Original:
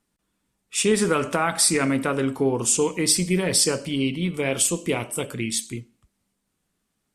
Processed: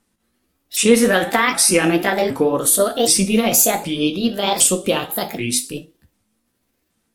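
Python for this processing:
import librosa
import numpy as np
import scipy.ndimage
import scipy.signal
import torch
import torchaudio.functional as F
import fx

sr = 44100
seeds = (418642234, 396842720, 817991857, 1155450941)

y = fx.pitch_ramps(x, sr, semitones=7.5, every_ms=767)
y = fx.rev_gated(y, sr, seeds[0], gate_ms=90, shape='falling', drr_db=8.0)
y = F.gain(torch.from_numpy(y), 6.5).numpy()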